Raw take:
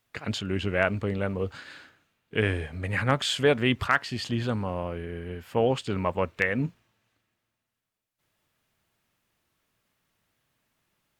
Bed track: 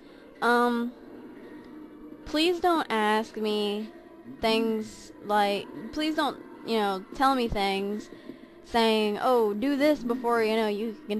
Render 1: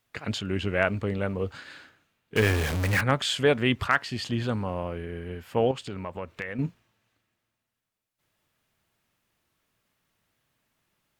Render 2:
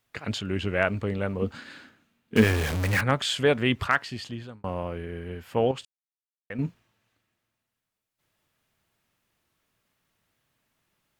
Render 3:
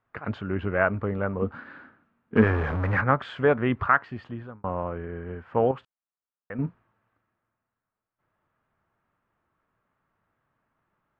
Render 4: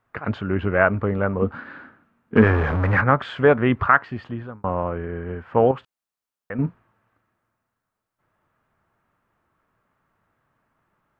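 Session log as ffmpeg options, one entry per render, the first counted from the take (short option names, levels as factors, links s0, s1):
-filter_complex "[0:a]asettb=1/sr,asplit=3[s0][s1][s2];[s0]atrim=end=2.364[s3];[s1]atrim=start=2.36:end=3.01,asetpts=PTS-STARTPTS,afade=t=in:d=0.004:c=qsin,afade=t=out:st=0.646:d=0.004:c=qsin,aeval=exprs='val(0)+0.5*0.0596*sgn(val(0))':c=same[s4];[s2]atrim=start=3.006[s5];[s3][s4]acrossfade=d=0.004:c1=hsin:c2=qsin[s6];[s6][s5]acrossfade=d=0.004:c1=qsin:c2=hsin,asettb=1/sr,asplit=3[s7][s8][s9];[s7]atrim=end=5.714[s10];[s8]atrim=start=5.71:end=6.59,asetpts=PTS-STARTPTS,afade=t=in:d=0.004:c=qsin,afade=t=out:st=0.876:d=0.004:c=qsin,acompressor=threshold=0.02:ratio=2.5:attack=3.2:release=140:knee=1:detection=peak[s11];[s9]atrim=start=6.586[s12];[s10][s11]acrossfade=d=0.004:c1=hsin:c2=qsin[s13];[s13][s12]acrossfade=d=0.004:c1=qsin:c2=hsin"
-filter_complex "[0:a]asettb=1/sr,asplit=3[s0][s1][s2];[s0]atrim=end=1.424[s3];[s1]atrim=start=1.42:end=2.44,asetpts=PTS-STARTPTS,afade=t=in:d=0.004:c=qsin,afade=t=out:st=1.016:d=0.004:c=qsin,equalizer=f=230:w=2.4:g=13[s4];[s2]atrim=start=2.436[s5];[s3][s4]acrossfade=d=0.004:c1=hsin:c2=qsin[s6];[s6][s5]acrossfade=d=0.004:c1=qsin:c2=hsin,asplit=4[s7][s8][s9][s10];[s7]atrim=end=4.64,asetpts=PTS-STARTPTS,afade=t=out:st=3.93:d=0.71[s11];[s8]atrim=start=4.64:end=5.85,asetpts=PTS-STARTPTS,afade=t=in:d=0.004:c=hsin,afade=t=out:st=1.206:d=0.004:c=hsin[s12];[s9]atrim=start=5.85:end=6.5,asetpts=PTS-STARTPTS,volume=0[s13];[s10]atrim=start=6.5,asetpts=PTS-STARTPTS,afade=t=in:d=0.004:c=hsin[s14];[s11][s12][s13][s14]concat=n=4:v=0:a=1"
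-af "lowpass=f=1300:t=q:w=1.8"
-af "volume=1.88,alimiter=limit=0.794:level=0:latency=1"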